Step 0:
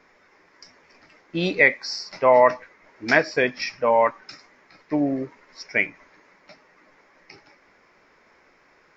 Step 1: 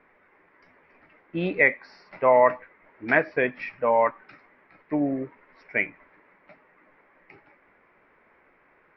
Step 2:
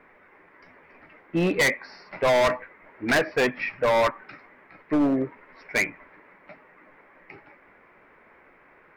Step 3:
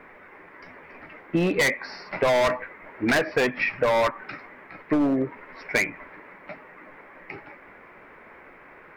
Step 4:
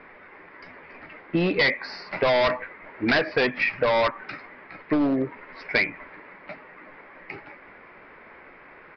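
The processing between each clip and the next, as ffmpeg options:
ffmpeg -i in.wav -af "lowpass=frequency=2600:width=0.5412,lowpass=frequency=2600:width=1.3066,volume=-2.5dB" out.wav
ffmpeg -i in.wav -af "volume=23dB,asoftclip=hard,volume=-23dB,volume=5.5dB" out.wav
ffmpeg -i in.wav -af "acompressor=threshold=-27dB:ratio=6,volume=7dB" out.wav
ffmpeg -i in.wav -af "aemphasis=mode=production:type=50fm,aresample=11025,aresample=44100" out.wav

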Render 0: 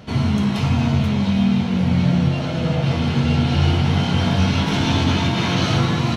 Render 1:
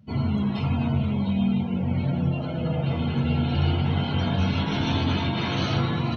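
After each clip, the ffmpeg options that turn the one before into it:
ffmpeg -i in.wav -af "afftdn=noise_reduction=23:noise_floor=-31,bandreject=frequency=60:width_type=h:width=6,bandreject=frequency=120:width_type=h:width=6,bandreject=frequency=180:width_type=h:width=6,volume=-5.5dB" out.wav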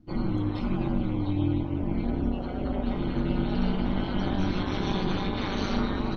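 ffmpeg -i in.wav -af "equalizer=frequency=2800:width_type=o:width=0.46:gain=-7.5,aeval=exprs='val(0)*sin(2*PI*99*n/s)':channel_layout=same" out.wav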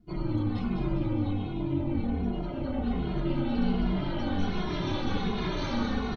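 ffmpeg -i in.wav -filter_complex "[0:a]asplit=2[link_01][link_02];[link_02]aecho=0:1:201|402|603|804|1005|1206:0.531|0.271|0.138|0.0704|0.0359|0.0183[link_03];[link_01][link_03]amix=inputs=2:normalize=0,asplit=2[link_04][link_05];[link_05]adelay=2.4,afreqshift=-1.3[link_06];[link_04][link_06]amix=inputs=2:normalize=1" out.wav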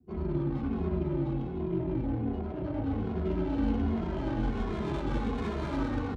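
ffmpeg -i in.wav -af "adynamicsmooth=sensitivity=5:basefreq=790,afreqshift=38,volume=-2dB" out.wav

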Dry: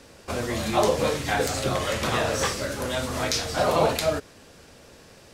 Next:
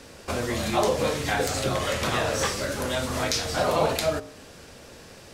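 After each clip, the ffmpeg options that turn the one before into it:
ffmpeg -i in.wav -filter_complex "[0:a]bandreject=frequency=55.64:width_type=h:width=4,bandreject=frequency=111.28:width_type=h:width=4,bandreject=frequency=166.92:width_type=h:width=4,bandreject=frequency=222.56:width_type=h:width=4,bandreject=frequency=278.2:width_type=h:width=4,bandreject=frequency=333.84:width_type=h:width=4,bandreject=frequency=389.48:width_type=h:width=4,bandreject=frequency=445.12:width_type=h:width=4,bandreject=frequency=500.76:width_type=h:width=4,bandreject=frequency=556.4:width_type=h:width=4,bandreject=frequency=612.04:width_type=h:width=4,bandreject=frequency=667.68:width_type=h:width=4,bandreject=frequency=723.32:width_type=h:width=4,bandreject=frequency=778.96:width_type=h:width=4,bandreject=frequency=834.6:width_type=h:width=4,bandreject=frequency=890.24:width_type=h:width=4,bandreject=frequency=945.88:width_type=h:width=4,bandreject=frequency=1001.52:width_type=h:width=4,bandreject=frequency=1057.16:width_type=h:width=4,bandreject=frequency=1112.8:width_type=h:width=4,bandreject=frequency=1168.44:width_type=h:width=4,bandreject=frequency=1224.08:width_type=h:width=4,bandreject=frequency=1279.72:width_type=h:width=4,asplit=2[link_01][link_02];[link_02]acompressor=threshold=-32dB:ratio=6,volume=2.5dB[link_03];[link_01][link_03]amix=inputs=2:normalize=0,volume=-3.5dB" out.wav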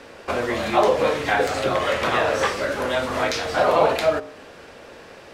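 ffmpeg -i in.wav -af "bass=frequency=250:gain=-11,treble=frequency=4000:gain=-14,volume=6.5dB" out.wav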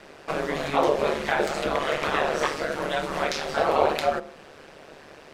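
ffmpeg -i in.wav -af "aeval=exprs='val(0)*sin(2*PI*73*n/s)':channel_layout=same,volume=-1dB" out.wav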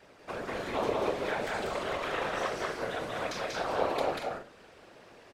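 ffmpeg -i in.wav -filter_complex "[0:a]afftfilt=real='hypot(re,im)*cos(2*PI*random(0))':imag='hypot(re,im)*sin(2*PI*random(1))':win_size=512:overlap=0.75,asplit=2[link_01][link_02];[link_02]aecho=0:1:189.5|233.2:0.794|0.398[link_03];[link_01][link_03]amix=inputs=2:normalize=0,volume=-4dB" out.wav

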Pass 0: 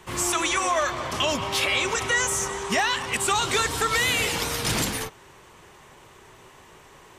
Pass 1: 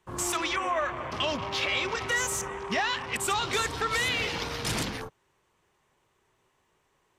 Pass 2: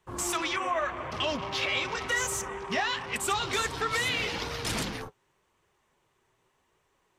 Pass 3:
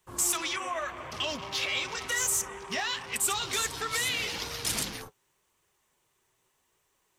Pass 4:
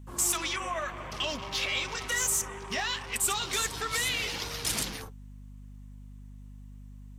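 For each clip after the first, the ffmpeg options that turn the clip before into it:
ffmpeg -i in.wav -af "afwtdn=0.02,volume=-4.5dB" out.wav
ffmpeg -i in.wav -af "flanger=delay=1.4:depth=7.2:regen=-52:speed=0.88:shape=triangular,volume=3dB" out.wav
ffmpeg -i in.wav -af "crystalizer=i=3:c=0,volume=-5.5dB" out.wav
ffmpeg -i in.wav -af "aeval=exprs='val(0)+0.00562*(sin(2*PI*50*n/s)+sin(2*PI*2*50*n/s)/2+sin(2*PI*3*50*n/s)/3+sin(2*PI*4*50*n/s)/4+sin(2*PI*5*50*n/s)/5)':channel_layout=same" out.wav

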